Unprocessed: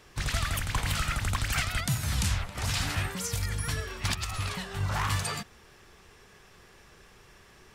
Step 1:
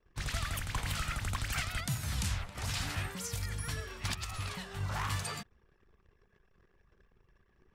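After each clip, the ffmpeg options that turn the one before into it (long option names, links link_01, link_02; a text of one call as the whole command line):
ffmpeg -i in.wav -af "anlmdn=0.00251,volume=-6dB" out.wav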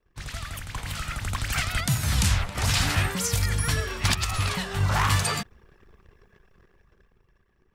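ffmpeg -i in.wav -af "dynaudnorm=framelen=360:gausssize=9:maxgain=12.5dB" out.wav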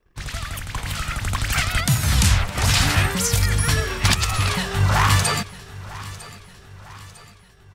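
ffmpeg -i in.wav -af "aecho=1:1:952|1904|2856|3808:0.126|0.0617|0.0302|0.0148,volume=5.5dB" out.wav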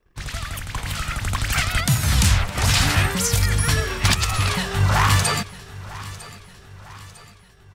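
ffmpeg -i in.wav -af "asoftclip=type=hard:threshold=-9dB" out.wav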